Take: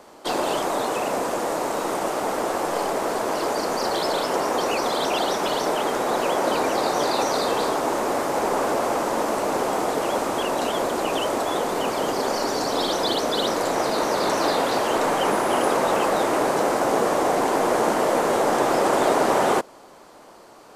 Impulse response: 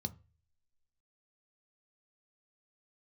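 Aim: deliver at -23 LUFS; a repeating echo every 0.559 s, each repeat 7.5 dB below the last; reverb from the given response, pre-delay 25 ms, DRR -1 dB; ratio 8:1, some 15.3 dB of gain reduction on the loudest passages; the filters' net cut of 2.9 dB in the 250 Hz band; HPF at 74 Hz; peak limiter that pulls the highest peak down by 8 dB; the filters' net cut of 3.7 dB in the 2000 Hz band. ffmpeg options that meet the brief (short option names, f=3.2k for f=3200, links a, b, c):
-filter_complex "[0:a]highpass=74,equalizer=f=250:t=o:g=-4,equalizer=f=2k:t=o:g=-5,acompressor=threshold=-34dB:ratio=8,alimiter=level_in=6dB:limit=-24dB:level=0:latency=1,volume=-6dB,aecho=1:1:559|1118|1677|2236|2795:0.422|0.177|0.0744|0.0312|0.0131,asplit=2[a][b];[1:a]atrim=start_sample=2205,adelay=25[c];[b][c]afir=irnorm=-1:irlink=0,volume=2.5dB[d];[a][d]amix=inputs=2:normalize=0,volume=10dB"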